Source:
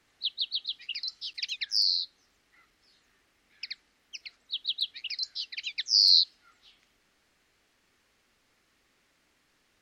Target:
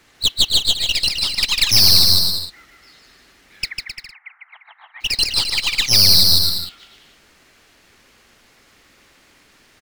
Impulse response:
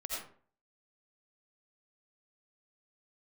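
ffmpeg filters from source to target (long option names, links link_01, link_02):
-filter_complex "[0:a]asplit=3[link_01][link_02][link_03];[link_01]afade=type=out:start_time=1.59:duration=0.02[link_04];[link_02]aemphasis=mode=production:type=75fm,afade=type=in:start_time=1.59:duration=0.02,afade=type=out:start_time=2.03:duration=0.02[link_05];[link_03]afade=type=in:start_time=2.03:duration=0.02[link_06];[link_04][link_05][link_06]amix=inputs=3:normalize=0,acrusher=bits=4:mode=log:mix=0:aa=0.000001,aeval=exprs='(tanh(25.1*val(0)+0.7)-tanh(0.7))/25.1':channel_layout=same,asplit=3[link_07][link_08][link_09];[link_07]afade=type=out:start_time=3.68:duration=0.02[link_10];[link_08]asuperpass=centerf=1300:order=12:qfactor=0.96,afade=type=in:start_time=3.68:duration=0.02,afade=type=out:start_time=5:duration=0.02[link_11];[link_09]afade=type=in:start_time=5:duration=0.02[link_12];[link_10][link_11][link_12]amix=inputs=3:normalize=0,asplit=2[link_13][link_14];[link_14]aecho=0:1:150|262.5|346.9|410.2|457.6:0.631|0.398|0.251|0.158|0.1[link_15];[link_13][link_15]amix=inputs=2:normalize=0,alimiter=level_in=19.5dB:limit=-1dB:release=50:level=0:latency=1,volume=-1dB"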